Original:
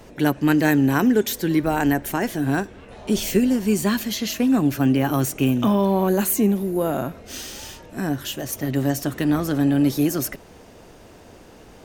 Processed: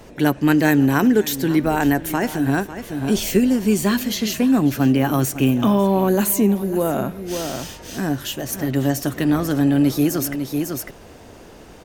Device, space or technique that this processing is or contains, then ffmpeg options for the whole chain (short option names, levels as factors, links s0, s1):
ducked delay: -filter_complex "[0:a]asplit=3[s0][s1][s2];[s1]adelay=550,volume=0.596[s3];[s2]apad=whole_len=546628[s4];[s3][s4]sidechaincompress=threshold=0.0282:ratio=6:attack=22:release=346[s5];[s0][s5]amix=inputs=2:normalize=0,volume=1.26"